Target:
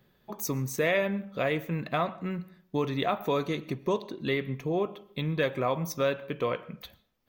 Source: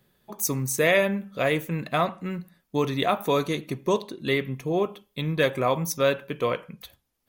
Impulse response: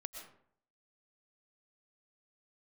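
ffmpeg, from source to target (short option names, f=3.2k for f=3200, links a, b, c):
-filter_complex "[0:a]equalizer=f=10k:t=o:w=1.1:g=-13.5,acompressor=threshold=-35dB:ratio=1.5,asplit=2[a][b];[1:a]atrim=start_sample=2205[c];[b][c]afir=irnorm=-1:irlink=0,volume=-12.5dB[d];[a][d]amix=inputs=2:normalize=0"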